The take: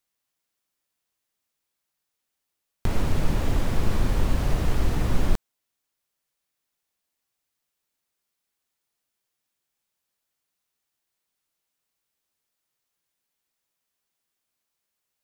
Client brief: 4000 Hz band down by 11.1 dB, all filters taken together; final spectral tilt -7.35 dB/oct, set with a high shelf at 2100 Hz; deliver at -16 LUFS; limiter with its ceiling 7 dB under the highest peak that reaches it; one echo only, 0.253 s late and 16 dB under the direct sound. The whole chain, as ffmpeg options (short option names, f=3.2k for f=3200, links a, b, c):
-af "highshelf=f=2.1k:g=-8,equalizer=f=4k:t=o:g=-7,alimiter=limit=-15dB:level=0:latency=1,aecho=1:1:253:0.158,volume=13.5dB"